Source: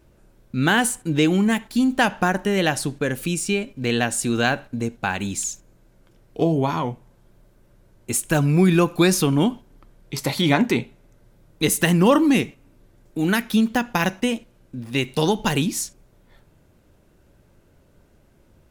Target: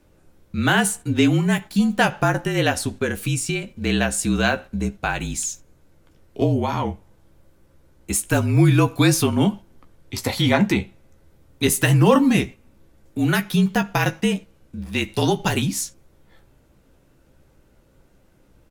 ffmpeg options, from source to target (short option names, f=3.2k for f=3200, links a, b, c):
-filter_complex "[0:a]afreqshift=-38,asplit=2[a][b];[b]adelay=15,volume=-8.5dB[c];[a][c]amix=inputs=2:normalize=0"